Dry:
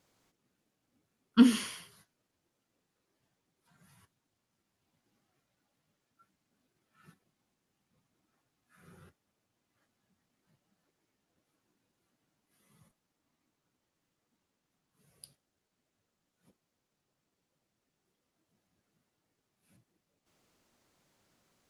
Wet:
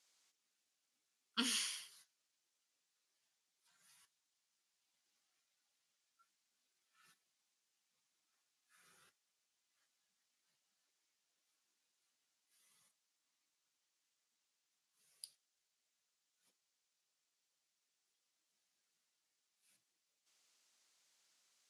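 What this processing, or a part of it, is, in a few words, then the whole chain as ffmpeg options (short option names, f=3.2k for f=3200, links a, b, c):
piezo pickup straight into a mixer: -af "lowpass=6.7k,aderivative,volume=6dB"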